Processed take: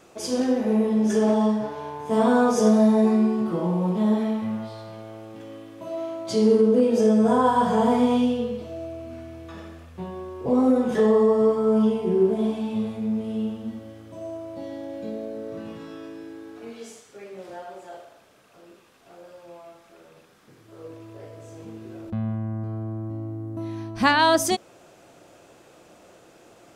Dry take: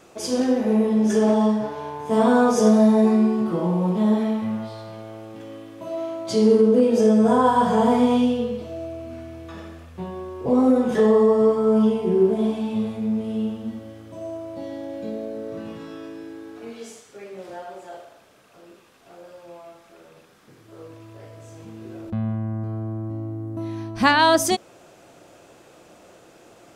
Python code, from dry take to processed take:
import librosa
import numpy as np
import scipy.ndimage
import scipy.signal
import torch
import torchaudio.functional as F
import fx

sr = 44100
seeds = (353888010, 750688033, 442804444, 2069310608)

y = fx.peak_eq(x, sr, hz=430.0, db=6.0, octaves=1.1, at=(20.84, 21.78))
y = F.gain(torch.from_numpy(y), -2.0).numpy()